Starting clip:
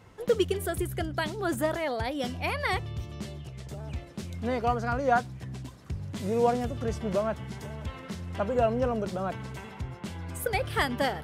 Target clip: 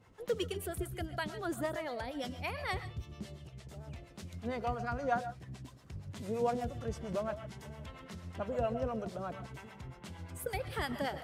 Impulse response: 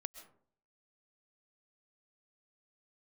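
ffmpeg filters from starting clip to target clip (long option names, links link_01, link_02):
-filter_complex "[0:a]acrossover=split=570[link_01][link_02];[link_01]aeval=exprs='val(0)*(1-0.7/2+0.7/2*cos(2*PI*8.7*n/s))':channel_layout=same[link_03];[link_02]aeval=exprs='val(0)*(1-0.7/2-0.7/2*cos(2*PI*8.7*n/s))':channel_layout=same[link_04];[link_03][link_04]amix=inputs=2:normalize=0[link_05];[1:a]atrim=start_sample=2205,atrim=end_sample=6615[link_06];[link_05][link_06]afir=irnorm=-1:irlink=0,volume=-1.5dB"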